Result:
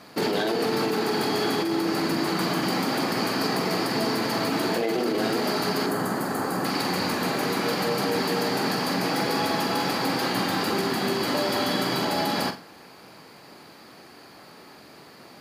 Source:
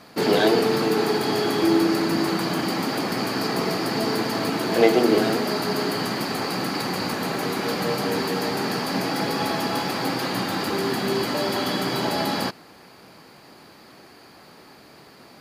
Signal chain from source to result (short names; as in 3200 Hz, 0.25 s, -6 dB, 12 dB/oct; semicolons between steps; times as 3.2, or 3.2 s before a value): 5.86–6.65 band shelf 3500 Hz -10.5 dB; limiter -15.5 dBFS, peak gain reduction 11 dB; low shelf 69 Hz -8 dB; flutter echo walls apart 7.6 m, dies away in 0.29 s; negative-ratio compressor -24 dBFS, ratio -1